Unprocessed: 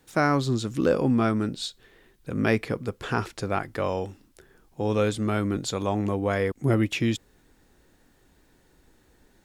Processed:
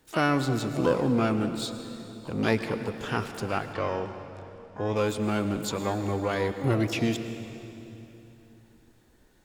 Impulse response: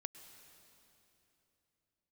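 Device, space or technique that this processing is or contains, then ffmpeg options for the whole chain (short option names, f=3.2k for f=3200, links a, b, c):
shimmer-style reverb: -filter_complex "[0:a]asplit=2[a][b];[b]asetrate=88200,aresample=44100,atempo=0.5,volume=-10dB[c];[a][c]amix=inputs=2:normalize=0[d];[1:a]atrim=start_sample=2205[e];[d][e]afir=irnorm=-1:irlink=0,asettb=1/sr,asplit=3[f][g][h];[f]atrim=end=3.734[i];[g]atrim=start=3.73:end=4.96,asetpts=PTS-STARTPTS,afade=t=in:d=0.004:c=qsin,afade=t=out:st=1.226:d=0.004:c=qsin,lowpass=5.6k[j];[h]atrim=start=4.956[k];[i][j]acrossfade=d=0.004:c1=hsin:c2=qsin[l];[l][k]acrossfade=d=0.004:c1=qsin:c2=hsin,volume=1.5dB"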